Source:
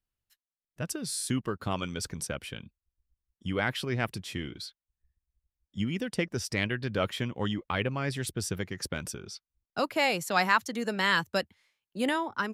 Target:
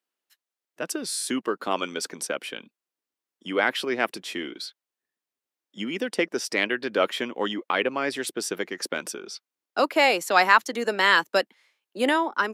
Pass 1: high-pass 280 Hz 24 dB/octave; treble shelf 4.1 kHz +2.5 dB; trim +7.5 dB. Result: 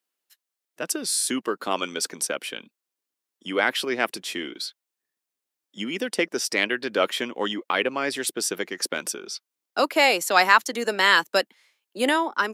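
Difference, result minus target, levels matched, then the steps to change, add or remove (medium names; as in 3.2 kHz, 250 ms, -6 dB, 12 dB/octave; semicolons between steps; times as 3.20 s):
8 kHz band +4.5 dB
change: treble shelf 4.1 kHz -4.5 dB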